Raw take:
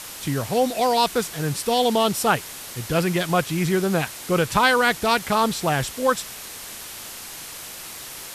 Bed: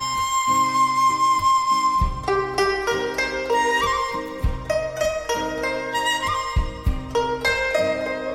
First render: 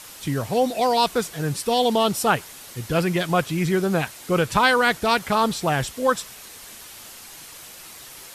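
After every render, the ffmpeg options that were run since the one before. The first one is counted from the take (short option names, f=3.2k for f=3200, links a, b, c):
-af "afftdn=nr=6:nf=-37"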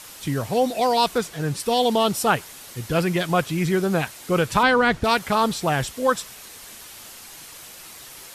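-filter_complex "[0:a]asettb=1/sr,asplit=3[a][b][c];[a]atrim=end=1.184[d];[b]atrim=start=1.18:end=1.6,asetpts=PTS-STARTPTS,afade=t=in:d=0.004:c=qsin,afade=t=out:st=0.416:d=0.004:c=qsin,highshelf=f=8.3k:g=-6[e];[c]atrim=start=1.596[f];[d][e]acrossfade=d=0.004:c1=hsin:c2=qsin[g];[g][f]acrossfade=d=0.004:c1=qsin:c2=hsin,asettb=1/sr,asplit=3[h][i][j];[h]atrim=end=4.634[k];[i]atrim=start=4.63:end=5.04,asetpts=PTS-STARTPTS,afade=t=in:d=0.004:c=qsin,afade=t=out:st=0.406:d=0.004:c=qsin,aemphasis=mode=reproduction:type=bsi[l];[j]atrim=start=5.036[m];[k][l]acrossfade=d=0.004:c1=hsin:c2=qsin[n];[n][m]acrossfade=d=0.004:c1=qsin:c2=hsin"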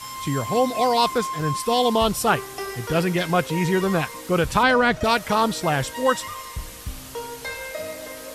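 -filter_complex "[1:a]volume=-11.5dB[a];[0:a][a]amix=inputs=2:normalize=0"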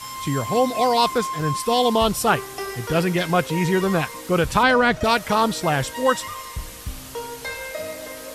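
-af "volume=1dB"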